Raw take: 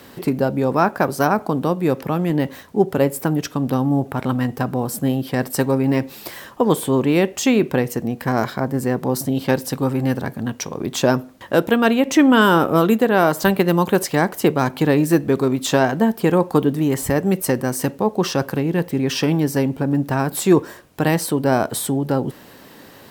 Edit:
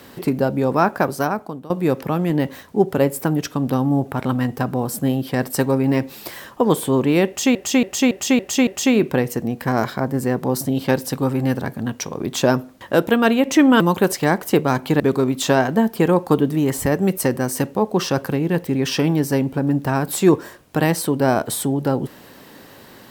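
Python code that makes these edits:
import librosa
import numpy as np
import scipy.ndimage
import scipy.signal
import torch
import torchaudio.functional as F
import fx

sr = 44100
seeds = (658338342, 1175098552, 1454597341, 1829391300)

y = fx.edit(x, sr, fx.fade_out_to(start_s=0.99, length_s=0.71, floor_db=-21.0),
    fx.repeat(start_s=7.27, length_s=0.28, count=6),
    fx.cut(start_s=12.4, length_s=1.31),
    fx.cut(start_s=14.91, length_s=0.33), tone=tone)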